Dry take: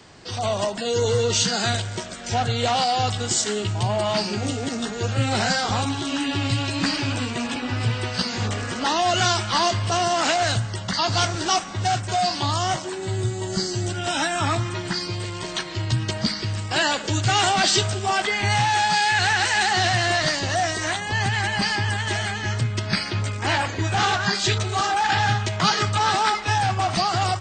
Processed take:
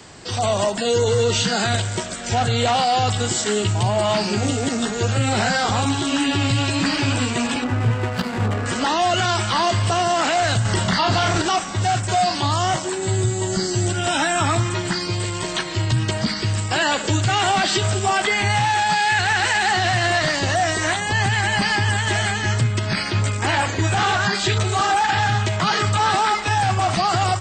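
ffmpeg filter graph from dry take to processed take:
ffmpeg -i in.wav -filter_complex "[0:a]asettb=1/sr,asplit=3[link_01][link_02][link_03];[link_01]atrim=end=7.644[link_04];[link_02]atrim=start=7.64:end=8.66,asetpts=PTS-STARTPTS,afade=type=in:duration=0.004:curve=qsin,afade=type=out:start_time=1.016:duration=0.004:curve=qsin,highpass=43,highshelf=frequency=3100:gain=-4.5,adynamicsmooth=sensitivity=3:basefreq=850[link_05];[link_03]atrim=start=8.656[link_06];[link_04][link_05]acrossfade=duration=0.004:curve1=hsin:curve2=qsin[link_07];[link_07][link_06]acrossfade=duration=0.004:curve1=qsin:curve2=hsin,asettb=1/sr,asplit=3[link_08][link_09][link_10];[link_08]atrim=end=10.654[link_11];[link_09]atrim=start=10.65:end=11.42,asetpts=PTS-STARTPTS,afade=type=in:duration=0.004:curve=qsin,afade=type=out:start_time=0.766:duration=0.004:curve=qsin,acontrast=63,asplit=2[link_12][link_13];[link_13]adelay=33,volume=-4.5dB[link_14];[link_12][link_14]amix=inputs=2:normalize=0,atrim=end_sample=33957[link_15];[link_10]atrim=start=11.416[link_16];[link_11][link_15]acrossfade=duration=0.004:curve1=hsin:curve2=qsin[link_17];[link_17][link_16]acrossfade=duration=0.004:curve1=qsin:curve2=hsin,acrossover=split=3900[link_18][link_19];[link_19]acompressor=threshold=-36dB:ratio=4:attack=1:release=60[link_20];[link_18][link_20]amix=inputs=2:normalize=0,equalizer=frequency=7700:width_type=o:width=0.22:gain=10,alimiter=limit=-15.5dB:level=0:latency=1:release=43,volume=5dB" out.wav

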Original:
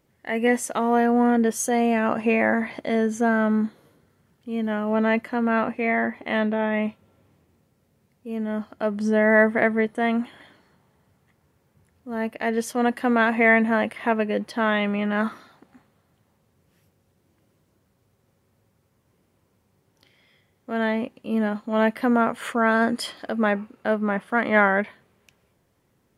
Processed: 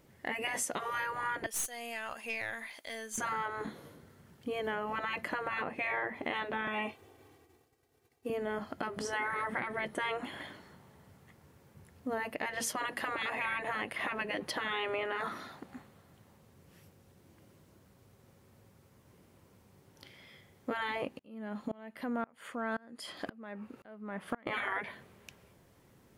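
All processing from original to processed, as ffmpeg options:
ffmpeg -i in.wav -filter_complex "[0:a]asettb=1/sr,asplit=3[link_01][link_02][link_03];[link_01]atrim=end=1.464[link_04];[link_02]atrim=start=1.46:end=3.18,asetpts=PTS-STARTPTS,afade=type=in:duration=0.004:curve=qsin,afade=type=out:start_time=1.716:duration=0.004:curve=qsin,aderivative,aeval=exprs='(tanh(15.8*val(0)+0.6)-tanh(0.6))/15.8':channel_layout=same[link_05];[link_03]atrim=start=3.176[link_06];[link_04][link_05]acrossfade=duration=0.004:curve1=hsin:curve2=qsin[link_07];[link_07][link_06]acrossfade=duration=0.004:curve1=qsin:curve2=hsin,asettb=1/sr,asplit=3[link_08][link_09][link_10];[link_08]atrim=end=6.674[link_11];[link_09]atrim=start=6.67:end=8.3,asetpts=PTS-STARTPTS,afade=type=in:duration=0.004:curve=qsin,afade=type=out:start_time=1.626:duration=0.004:curve=qsin,agate=range=-33dB:threshold=-59dB:ratio=3:release=100:detection=peak,bass=frequency=250:gain=-8,treble=frequency=4000:gain=0,aecho=1:1:2.6:0.92,atrim=end_sample=71883[link_12];[link_10]atrim=start=8.296[link_13];[link_11][link_12]acrossfade=duration=0.004:curve1=hsin:curve2=qsin[link_14];[link_14][link_13]acrossfade=duration=0.004:curve1=qsin:curve2=hsin,asettb=1/sr,asplit=3[link_15][link_16][link_17];[link_15]atrim=end=21.194[link_18];[link_16]atrim=start=21.19:end=24.47,asetpts=PTS-STARTPTS,afade=type=in:duration=0.004:curve=qsin,afade=type=out:start_time=3.276:duration=0.004:curve=qsin,acompressor=threshold=-33dB:ratio=2:attack=3.2:release=140:knee=1:detection=peak,aeval=exprs='val(0)*pow(10,-30*if(lt(mod(-1.9*n/s,1),2*abs(-1.9)/1000),1-mod(-1.9*n/s,1)/(2*abs(-1.9)/1000),(mod(-1.9*n/s,1)-2*abs(-1.9)/1000)/(1-2*abs(-1.9)/1000))/20)':channel_layout=same[link_19];[link_17]atrim=start=24.466[link_20];[link_18][link_19]acrossfade=duration=0.004:curve1=hsin:curve2=qsin[link_21];[link_21][link_20]acrossfade=duration=0.004:curve1=qsin:curve2=hsin,afftfilt=real='re*lt(hypot(re,im),0.251)':imag='im*lt(hypot(re,im),0.251)':win_size=1024:overlap=0.75,alimiter=limit=-21.5dB:level=0:latency=1:release=202,acompressor=threshold=-38dB:ratio=3,volume=4.5dB" out.wav

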